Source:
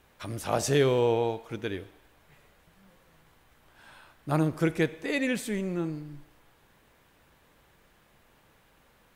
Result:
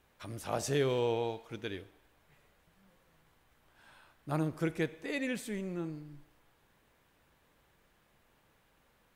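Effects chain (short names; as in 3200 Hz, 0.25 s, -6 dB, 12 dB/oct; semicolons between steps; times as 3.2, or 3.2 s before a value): 0.89–1.82 dynamic EQ 4100 Hz, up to +5 dB, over -51 dBFS, Q 0.74; gain -7 dB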